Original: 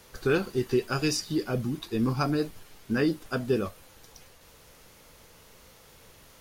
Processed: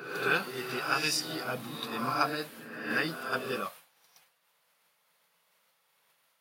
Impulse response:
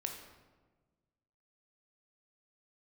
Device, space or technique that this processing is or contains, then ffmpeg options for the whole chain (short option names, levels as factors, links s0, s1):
ghost voice: -filter_complex "[0:a]equalizer=f=380:w=0.92:g=-3.5,agate=range=0.0224:threshold=0.00794:ratio=3:detection=peak,areverse[s0];[1:a]atrim=start_sample=2205[s1];[s0][s1]afir=irnorm=-1:irlink=0,areverse,highpass=590,equalizer=f=160:t=o:w=0.67:g=11,equalizer=f=400:t=o:w=0.67:g=-6,equalizer=f=6300:t=o:w=0.67:g=-7,volume=1.88"